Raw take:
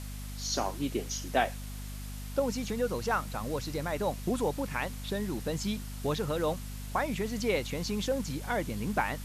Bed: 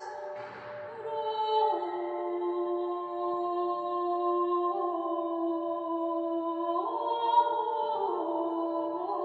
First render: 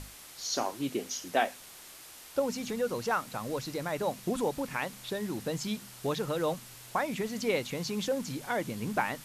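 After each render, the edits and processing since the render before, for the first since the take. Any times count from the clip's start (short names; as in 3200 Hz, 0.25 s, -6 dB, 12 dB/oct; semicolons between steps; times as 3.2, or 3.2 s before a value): notches 50/100/150/200/250 Hz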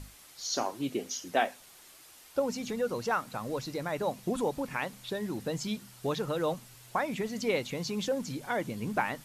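denoiser 6 dB, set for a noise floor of -50 dBFS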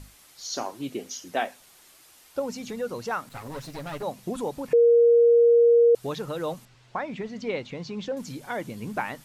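3.29–4.03 minimum comb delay 7.2 ms; 4.73–5.95 bleep 470 Hz -13.5 dBFS; 6.65–8.17 air absorption 140 m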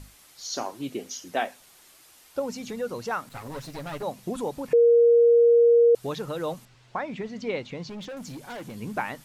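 7.89–8.75 hard clip -35 dBFS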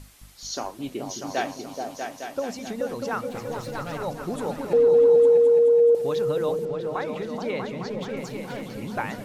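repeats that get brighter 0.214 s, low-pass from 200 Hz, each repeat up 2 oct, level 0 dB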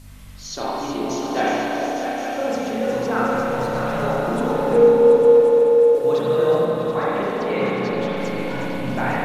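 thin delay 0.364 s, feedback 78%, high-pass 5300 Hz, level -6 dB; spring tank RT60 2.9 s, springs 31/40 ms, chirp 55 ms, DRR -8.5 dB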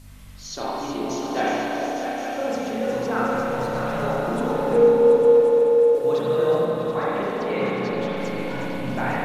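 gain -2.5 dB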